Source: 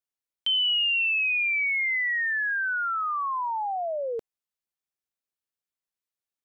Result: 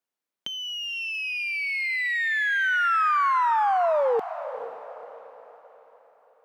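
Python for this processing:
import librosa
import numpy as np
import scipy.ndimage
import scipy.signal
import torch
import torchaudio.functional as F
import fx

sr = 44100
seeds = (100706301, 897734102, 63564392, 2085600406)

p1 = np.where(x < 0.0, 10.0 ** (-7.0 / 20.0) * x, x)
p2 = fx.over_compress(p1, sr, threshold_db=-30.0, ratio=-0.5)
p3 = scipy.signal.sosfilt(scipy.signal.butter(4, 170.0, 'highpass', fs=sr, output='sos'), p2)
p4 = fx.high_shelf(p3, sr, hz=2500.0, db=-8.5)
p5 = p4 + fx.echo_diffused(p4, sr, ms=482, feedback_pct=43, wet_db=-12, dry=0)
y = p5 * librosa.db_to_amplitude(8.5)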